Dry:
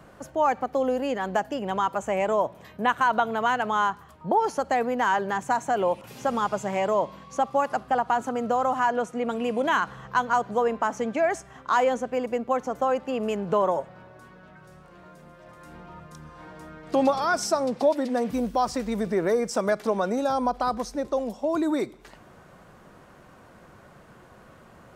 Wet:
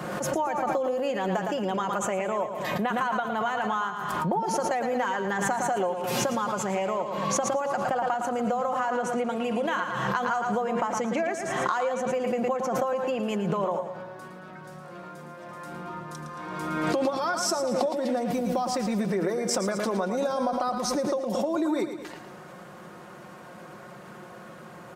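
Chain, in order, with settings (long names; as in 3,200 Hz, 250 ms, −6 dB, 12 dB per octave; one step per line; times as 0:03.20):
high-pass filter 140 Hz 12 dB per octave
comb filter 5.6 ms, depth 47%
downward compressor, threshold −31 dBFS, peak gain reduction 15 dB
repeating echo 112 ms, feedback 47%, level −9 dB
background raised ahead of every attack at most 27 dB per second
level +5 dB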